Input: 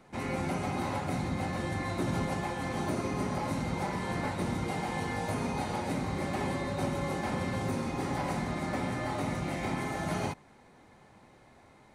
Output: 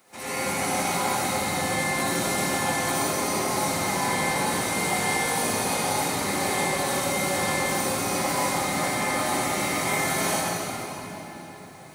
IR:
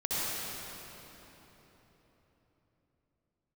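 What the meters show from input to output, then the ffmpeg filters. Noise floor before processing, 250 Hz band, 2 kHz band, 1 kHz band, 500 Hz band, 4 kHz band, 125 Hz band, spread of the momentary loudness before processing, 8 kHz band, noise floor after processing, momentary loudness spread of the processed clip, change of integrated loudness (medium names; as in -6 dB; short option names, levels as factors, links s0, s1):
-58 dBFS, +3.0 dB, +12.0 dB, +9.5 dB, +7.5 dB, +14.5 dB, 0.0 dB, 1 LU, +20.5 dB, -41 dBFS, 6 LU, +8.5 dB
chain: -filter_complex "[0:a]aemphasis=mode=production:type=riaa[s0];[1:a]atrim=start_sample=2205[s1];[s0][s1]afir=irnorm=-1:irlink=0"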